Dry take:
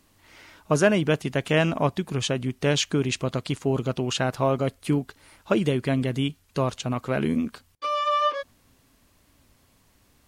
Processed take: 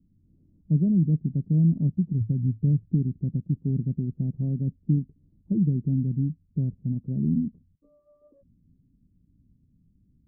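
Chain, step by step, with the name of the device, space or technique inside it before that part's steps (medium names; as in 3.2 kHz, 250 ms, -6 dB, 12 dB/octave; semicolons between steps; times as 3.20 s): the neighbour's flat through the wall (low-pass 250 Hz 24 dB/octave; peaking EQ 170 Hz +7.5 dB 0.57 oct); 2.20–2.95 s: peaking EQ 110 Hz +12.5 dB 0.28 oct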